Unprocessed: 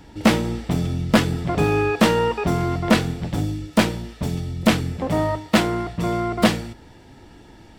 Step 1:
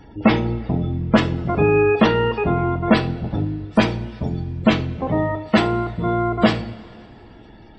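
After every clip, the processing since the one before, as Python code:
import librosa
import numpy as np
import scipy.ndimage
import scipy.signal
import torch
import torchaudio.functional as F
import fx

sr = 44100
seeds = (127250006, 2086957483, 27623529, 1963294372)

y = fx.spec_gate(x, sr, threshold_db=-25, keep='strong')
y = fx.rev_double_slope(y, sr, seeds[0], early_s=0.36, late_s=2.9, knee_db=-19, drr_db=7.0)
y = y * 10.0 ** (1.0 / 20.0)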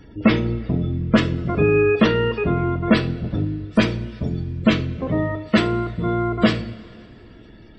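y = fx.peak_eq(x, sr, hz=830.0, db=-14.5, octaves=0.38)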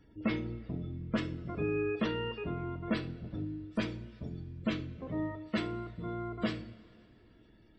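y = fx.comb_fb(x, sr, f0_hz=310.0, decay_s=0.39, harmonics='odd', damping=0.0, mix_pct=60)
y = y * 10.0 ** (-9.0 / 20.0)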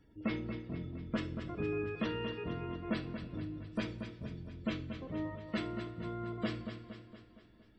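y = fx.echo_feedback(x, sr, ms=232, feedback_pct=54, wet_db=-9.0)
y = y * 10.0 ** (-3.5 / 20.0)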